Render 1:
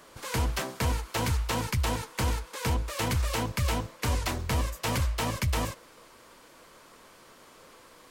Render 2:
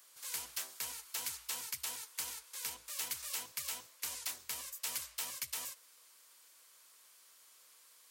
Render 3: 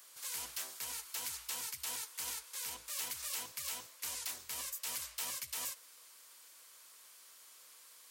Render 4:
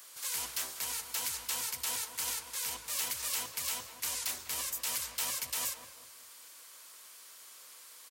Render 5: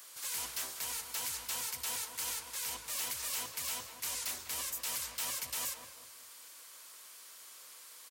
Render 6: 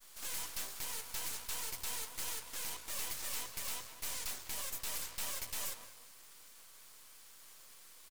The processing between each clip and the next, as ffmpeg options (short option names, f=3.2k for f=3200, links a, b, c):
-af "aderivative,volume=-2dB"
-af "alimiter=level_in=7.5dB:limit=-24dB:level=0:latency=1:release=108,volume=-7.5dB,volume=4dB"
-filter_complex "[0:a]asplit=2[a][b];[b]adelay=195,lowpass=f=1.1k:p=1,volume=-7dB,asplit=2[c][d];[d]adelay=195,lowpass=f=1.1k:p=1,volume=0.42,asplit=2[e][f];[f]adelay=195,lowpass=f=1.1k:p=1,volume=0.42,asplit=2[g][h];[h]adelay=195,lowpass=f=1.1k:p=1,volume=0.42,asplit=2[i][j];[j]adelay=195,lowpass=f=1.1k:p=1,volume=0.42[k];[a][c][e][g][i][k]amix=inputs=6:normalize=0,volume=5.5dB"
-af "asoftclip=type=tanh:threshold=-30.5dB"
-af "agate=range=-33dB:threshold=-50dB:ratio=3:detection=peak,aeval=exprs='max(val(0),0)':c=same,volume=1.5dB"